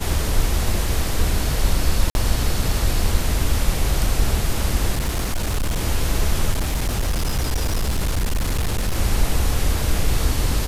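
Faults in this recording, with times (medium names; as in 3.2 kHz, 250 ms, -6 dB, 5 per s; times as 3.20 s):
2.10–2.15 s: dropout 51 ms
4.92–5.81 s: clipped -17.5 dBFS
6.51–8.97 s: clipped -17 dBFS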